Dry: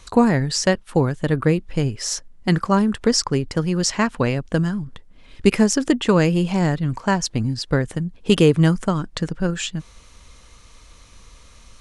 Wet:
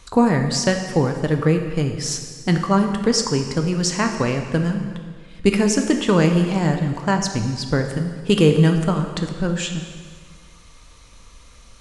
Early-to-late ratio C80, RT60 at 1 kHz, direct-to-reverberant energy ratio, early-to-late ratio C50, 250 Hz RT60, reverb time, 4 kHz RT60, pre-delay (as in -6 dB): 8.0 dB, 1.6 s, 4.5 dB, 6.5 dB, 1.7 s, 1.7 s, 1.6 s, 4 ms